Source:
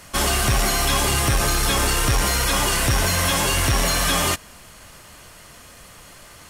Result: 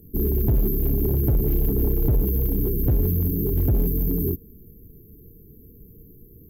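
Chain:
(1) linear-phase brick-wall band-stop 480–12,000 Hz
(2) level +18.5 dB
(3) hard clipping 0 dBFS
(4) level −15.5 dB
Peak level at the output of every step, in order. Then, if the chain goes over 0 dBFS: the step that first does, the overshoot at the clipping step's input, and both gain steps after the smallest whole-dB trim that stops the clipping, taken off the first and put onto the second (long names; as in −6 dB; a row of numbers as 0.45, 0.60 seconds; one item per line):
−12.5, +6.0, 0.0, −15.5 dBFS
step 2, 6.0 dB
step 2 +12.5 dB, step 4 −9.5 dB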